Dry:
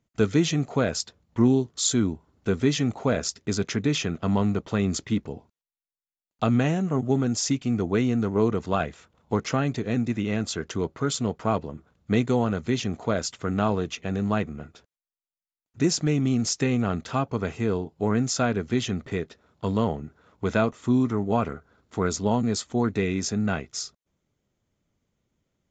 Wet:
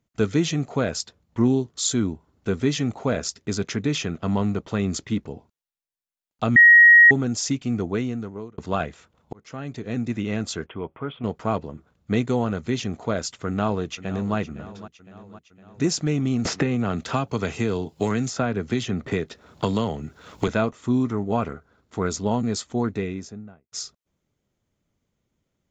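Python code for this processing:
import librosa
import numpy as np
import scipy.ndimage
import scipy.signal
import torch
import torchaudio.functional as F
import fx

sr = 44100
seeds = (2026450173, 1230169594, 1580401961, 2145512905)

y = fx.cheby_ripple(x, sr, hz=3400.0, ripple_db=6, at=(10.66, 11.24))
y = fx.echo_throw(y, sr, start_s=13.46, length_s=0.9, ms=510, feedback_pct=60, wet_db=-15.0)
y = fx.band_squash(y, sr, depth_pct=100, at=(16.45, 20.48))
y = fx.studio_fade_out(y, sr, start_s=22.71, length_s=1.01)
y = fx.edit(y, sr, fx.bleep(start_s=6.56, length_s=0.55, hz=1890.0, db=-7.5),
    fx.fade_out_span(start_s=7.8, length_s=0.78),
    fx.fade_in_span(start_s=9.33, length_s=0.8), tone=tone)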